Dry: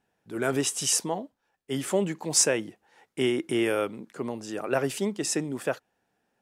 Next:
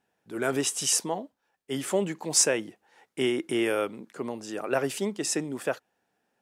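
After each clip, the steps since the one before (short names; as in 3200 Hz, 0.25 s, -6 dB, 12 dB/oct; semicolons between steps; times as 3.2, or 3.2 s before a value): low shelf 110 Hz -9.5 dB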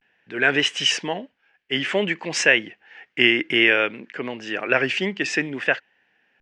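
vibrato 0.55 Hz 77 cents; LPF 5400 Hz 24 dB/oct; band shelf 2200 Hz +14 dB 1.2 oct; gain +3.5 dB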